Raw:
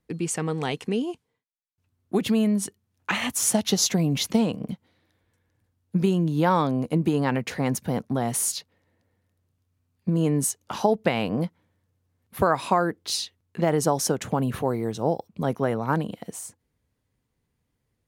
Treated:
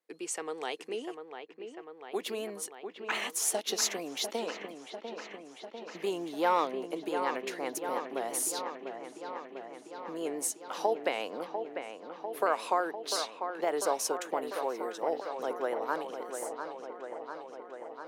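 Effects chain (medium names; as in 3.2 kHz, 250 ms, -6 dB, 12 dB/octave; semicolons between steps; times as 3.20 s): vibrato 5.8 Hz 55 cents; 6.06–6.65 s: waveshaping leveller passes 1; high-pass 370 Hz 24 dB/octave; on a send: feedback echo behind a low-pass 697 ms, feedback 73%, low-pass 2.6 kHz, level -7.5 dB; on the sum: trim -6.5 dB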